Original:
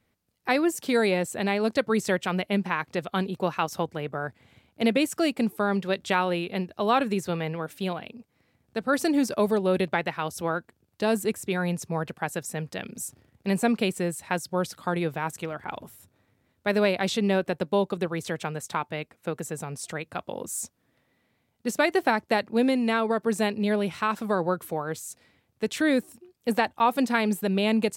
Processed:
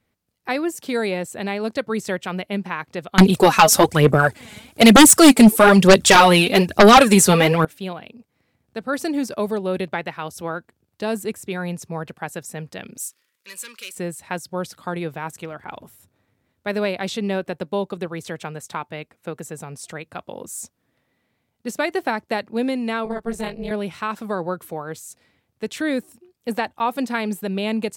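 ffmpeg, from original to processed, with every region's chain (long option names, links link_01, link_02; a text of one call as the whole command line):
ffmpeg -i in.wav -filter_complex "[0:a]asettb=1/sr,asplit=3[link_01][link_02][link_03];[link_01]atrim=end=3.184[link_04];[link_02]atrim=start=3.18:end=7.65,asetpts=PTS-STARTPTS,afade=type=in:duration=0.004:curve=qsin,afade=type=out:start_time=4.466:duration=0.004:curve=qsin,equalizer=frequency=9000:width_type=o:width=1.4:gain=12,aphaser=in_gain=1:out_gain=1:delay=4.8:decay=0.58:speed=1.1:type=sinusoidal,aeval=exprs='0.631*sin(PI/2*3.55*val(0)/0.631)':channel_layout=same[link_05];[link_03]atrim=start=7.646[link_06];[link_04][link_05]acrossfade=duration=0.004:curve1=hsin:curve2=qsin[link_07];[link_07][link_06]acrossfade=duration=0.004:curve1=qsin:curve2=hsin,asettb=1/sr,asplit=3[link_08][link_09][link_10];[link_08]atrim=end=12.974[link_11];[link_09]atrim=start=12.97:end=13.95,asetpts=PTS-STARTPTS,afade=type=in:duration=0.004:curve=qsin,afade=type=out:start_time=0.976:duration=0.004:curve=qsin,asplit=2[link_12][link_13];[link_13]highpass=frequency=720:poles=1,volume=18dB,asoftclip=type=tanh:threshold=-11dB[link_14];[link_12][link_14]amix=inputs=2:normalize=0,lowpass=frequency=3500:poles=1,volume=-6dB,asuperstop=centerf=730:order=8:qfactor=2.1,aderivative[link_15];[link_10]atrim=start=13.946[link_16];[link_11][link_15]acrossfade=duration=0.004:curve1=hsin:curve2=qsin[link_17];[link_17][link_16]acrossfade=duration=0.004:curve1=qsin:curve2=hsin,asettb=1/sr,asplit=3[link_18][link_19][link_20];[link_18]atrim=end=23.054[link_21];[link_19]atrim=start=23.05:end=23.71,asetpts=PTS-STARTPTS,afade=type=in:duration=0.004:curve=qsin,afade=type=out:start_time=0.656:duration=0.004:curve=qsin,tremolo=f=240:d=0.947,asplit=2[link_22][link_23];[link_23]adelay=18,volume=-4dB[link_24];[link_22][link_24]amix=inputs=2:normalize=0,atrim=end_sample=29106[link_25];[link_20]atrim=start=23.706[link_26];[link_21][link_25]acrossfade=duration=0.004:curve1=hsin:curve2=qsin[link_27];[link_27][link_26]acrossfade=duration=0.004:curve1=qsin:curve2=hsin" out.wav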